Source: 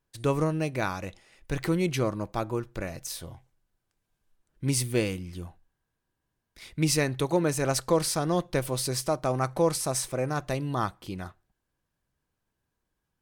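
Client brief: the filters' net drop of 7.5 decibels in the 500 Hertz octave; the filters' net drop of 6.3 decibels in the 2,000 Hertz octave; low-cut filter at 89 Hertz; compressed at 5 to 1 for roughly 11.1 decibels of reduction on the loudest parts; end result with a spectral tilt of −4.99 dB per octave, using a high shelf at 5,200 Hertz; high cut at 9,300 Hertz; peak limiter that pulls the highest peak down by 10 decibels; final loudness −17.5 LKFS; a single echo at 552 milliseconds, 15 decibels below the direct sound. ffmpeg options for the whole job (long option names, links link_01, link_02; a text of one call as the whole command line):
ffmpeg -i in.wav -af "highpass=89,lowpass=9300,equalizer=frequency=500:width_type=o:gain=-9,equalizer=frequency=2000:width_type=o:gain=-7,highshelf=frequency=5200:gain=-6,acompressor=threshold=-36dB:ratio=5,alimiter=level_in=11dB:limit=-24dB:level=0:latency=1,volume=-11dB,aecho=1:1:552:0.178,volume=27.5dB" out.wav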